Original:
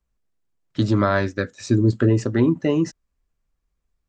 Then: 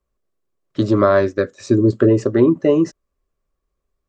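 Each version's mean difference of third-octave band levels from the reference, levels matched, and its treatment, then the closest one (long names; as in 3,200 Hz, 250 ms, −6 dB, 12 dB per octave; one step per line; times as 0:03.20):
3.0 dB: hollow resonant body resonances 400/560/1,100 Hz, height 11 dB, ringing for 25 ms
level −1.5 dB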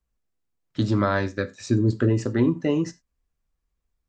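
1.0 dB: reverb whose tail is shaped and stops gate 120 ms falling, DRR 12 dB
level −3 dB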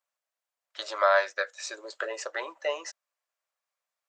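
13.5 dB: elliptic high-pass filter 570 Hz, stop band 60 dB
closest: second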